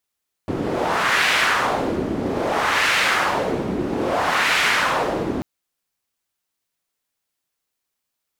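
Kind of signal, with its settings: wind-like swept noise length 4.94 s, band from 280 Hz, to 2100 Hz, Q 1.5, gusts 3, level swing 6 dB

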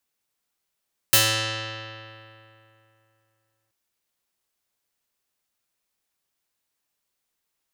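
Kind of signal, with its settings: plucked string A2, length 2.58 s, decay 2.83 s, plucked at 0.48, medium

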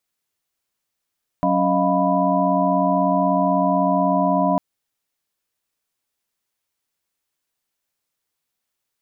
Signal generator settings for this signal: chord F#3/C#4/D#5/F5/B5 sine, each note -22 dBFS 3.15 s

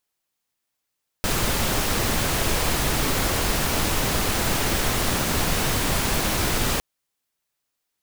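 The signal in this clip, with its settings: noise pink, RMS -22.5 dBFS 5.56 s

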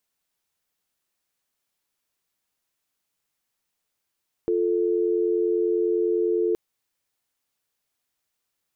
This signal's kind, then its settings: call progress tone dial tone, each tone -22.5 dBFS 2.07 s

